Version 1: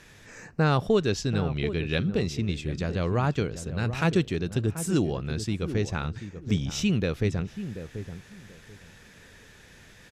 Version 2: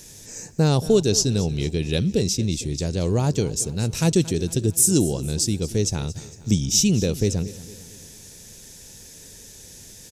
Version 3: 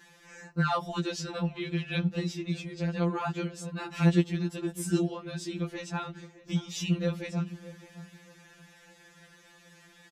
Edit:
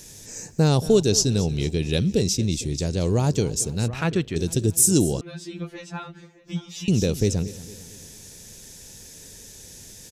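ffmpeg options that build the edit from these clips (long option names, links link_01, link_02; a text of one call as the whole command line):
ffmpeg -i take0.wav -i take1.wav -i take2.wav -filter_complex "[1:a]asplit=3[link_01][link_02][link_03];[link_01]atrim=end=3.882[link_04];[0:a]atrim=start=3.878:end=4.362[link_05];[link_02]atrim=start=4.358:end=5.212[link_06];[2:a]atrim=start=5.208:end=6.882[link_07];[link_03]atrim=start=6.878[link_08];[link_04][link_05]acrossfade=duration=0.004:curve1=hsin:curve2=hsin[link_09];[link_09][link_06]acrossfade=duration=0.004:curve1=hsin:curve2=hsin[link_10];[link_10][link_07]acrossfade=duration=0.004:curve1=hsin:curve2=hsin[link_11];[link_11][link_08]acrossfade=duration=0.004:curve1=hsin:curve2=hsin" out.wav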